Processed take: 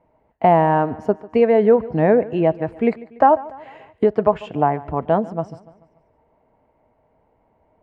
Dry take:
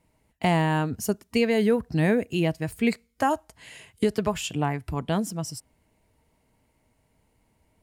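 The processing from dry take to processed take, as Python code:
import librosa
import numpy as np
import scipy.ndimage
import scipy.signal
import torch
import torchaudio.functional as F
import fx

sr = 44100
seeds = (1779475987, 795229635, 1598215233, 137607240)

p1 = scipy.signal.sosfilt(scipy.signal.butter(2, 1800.0, 'lowpass', fs=sr, output='sos'), x)
p2 = fx.peak_eq(p1, sr, hz=670.0, db=14.0, octaves=2.0)
p3 = p2 + fx.echo_feedback(p2, sr, ms=145, feedback_pct=52, wet_db=-20.0, dry=0)
y = p3 * 10.0 ** (-1.0 / 20.0)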